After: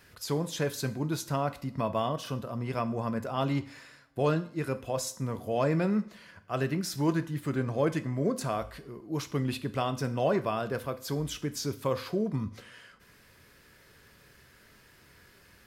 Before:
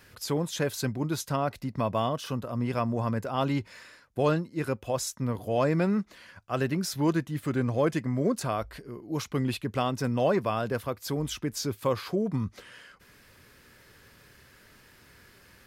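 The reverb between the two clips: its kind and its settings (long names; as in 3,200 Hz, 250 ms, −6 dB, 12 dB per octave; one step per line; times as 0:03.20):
coupled-rooms reverb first 0.5 s, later 2.3 s, from −25 dB, DRR 10 dB
level −2.5 dB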